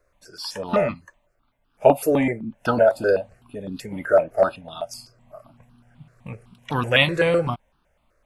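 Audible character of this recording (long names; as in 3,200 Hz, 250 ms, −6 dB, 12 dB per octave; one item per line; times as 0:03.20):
notches that jump at a steady rate 7.9 Hz 860–2,100 Hz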